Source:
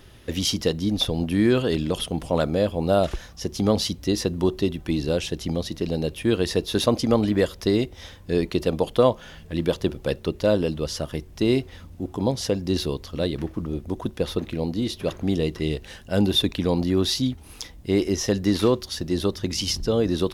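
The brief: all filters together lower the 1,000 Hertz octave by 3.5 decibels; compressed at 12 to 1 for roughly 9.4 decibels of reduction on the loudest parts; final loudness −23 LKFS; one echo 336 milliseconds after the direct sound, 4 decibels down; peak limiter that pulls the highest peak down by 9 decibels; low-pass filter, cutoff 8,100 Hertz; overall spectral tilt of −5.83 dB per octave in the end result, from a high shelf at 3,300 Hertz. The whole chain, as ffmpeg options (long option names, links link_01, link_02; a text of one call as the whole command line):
ffmpeg -i in.wav -af "lowpass=8100,equalizer=frequency=1000:width_type=o:gain=-4,highshelf=frequency=3300:gain=-8.5,acompressor=threshold=-24dB:ratio=12,alimiter=limit=-22.5dB:level=0:latency=1,aecho=1:1:336:0.631,volume=9.5dB" out.wav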